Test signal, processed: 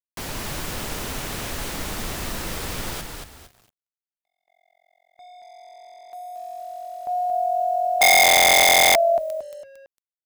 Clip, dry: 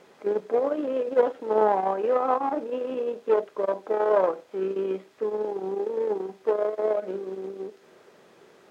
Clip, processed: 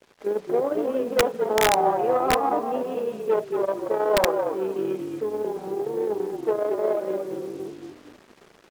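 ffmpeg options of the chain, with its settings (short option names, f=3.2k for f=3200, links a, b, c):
-filter_complex "[0:a]adynamicequalizer=threshold=0.0316:dfrequency=760:dqfactor=5.2:tfrequency=760:tqfactor=5.2:attack=5:release=100:ratio=0.375:range=2:mode=boostabove:tftype=bell,asplit=2[a][b];[b]asplit=4[c][d][e][f];[c]adelay=227,afreqshift=-44,volume=-5dB[g];[d]adelay=454,afreqshift=-88,volume=-14.9dB[h];[e]adelay=681,afreqshift=-132,volume=-24.8dB[i];[f]adelay=908,afreqshift=-176,volume=-34.7dB[j];[g][h][i][j]amix=inputs=4:normalize=0[k];[a][k]amix=inputs=2:normalize=0,acrusher=bits=7:mix=0:aa=0.5,aeval=exprs='(mod(3.35*val(0)+1,2)-1)/3.35':c=same"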